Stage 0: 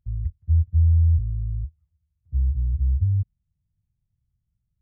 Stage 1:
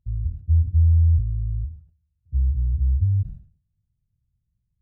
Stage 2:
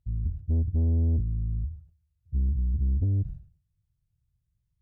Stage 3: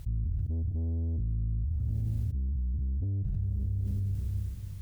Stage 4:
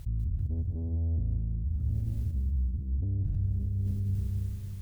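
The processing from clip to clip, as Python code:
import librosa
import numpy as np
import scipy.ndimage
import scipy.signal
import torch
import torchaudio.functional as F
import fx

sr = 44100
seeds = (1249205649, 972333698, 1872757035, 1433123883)

y1 = fx.wiener(x, sr, points=41)
y1 = fx.sustainer(y1, sr, db_per_s=130.0)
y1 = F.gain(torch.from_numpy(y1), 1.0).numpy()
y2 = fx.peak_eq(y1, sr, hz=220.0, db=-14.0, octaves=0.26)
y2 = fx.tube_stage(y2, sr, drive_db=21.0, bias=0.35)
y3 = fx.rev_schroeder(y2, sr, rt60_s=2.6, comb_ms=31, drr_db=19.5)
y3 = fx.env_flatten(y3, sr, amount_pct=100)
y3 = F.gain(torch.from_numpy(y3), -8.0).numpy()
y4 = fx.echo_feedback(y3, sr, ms=195, feedback_pct=39, wet_db=-7.5)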